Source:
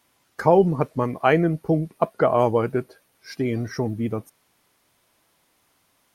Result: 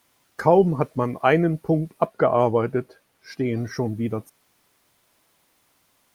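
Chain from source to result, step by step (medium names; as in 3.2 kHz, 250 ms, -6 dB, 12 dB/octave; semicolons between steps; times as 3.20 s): bit crusher 11-bit; 2.06–3.57 s: treble shelf 5.3 kHz -6.5 dB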